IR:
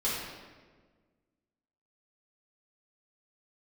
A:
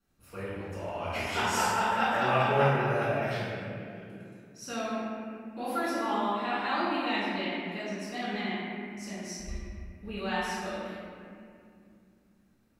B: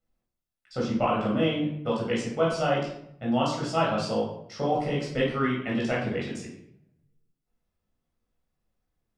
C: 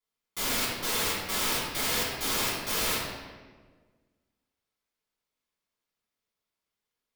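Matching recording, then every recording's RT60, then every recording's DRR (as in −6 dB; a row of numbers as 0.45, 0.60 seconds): C; 2.4, 0.70, 1.5 seconds; −13.0, −5.0, −10.0 decibels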